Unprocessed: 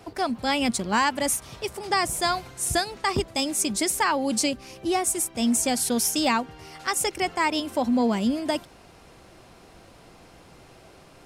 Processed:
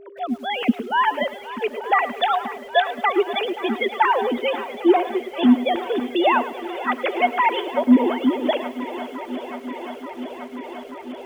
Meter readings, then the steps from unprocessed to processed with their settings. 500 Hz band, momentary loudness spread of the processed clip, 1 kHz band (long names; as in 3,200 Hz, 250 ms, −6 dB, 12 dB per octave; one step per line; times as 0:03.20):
+6.5 dB, 15 LU, +6.0 dB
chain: three sine waves on the formant tracks
automatic gain control gain up to 11.5 dB
feedback echo with a long and a short gap by turns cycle 882 ms, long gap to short 1.5 to 1, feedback 76%, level −15.5 dB
steady tone 400 Hz −37 dBFS
feedback echo at a low word length 107 ms, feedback 35%, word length 6 bits, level −14 dB
level −4 dB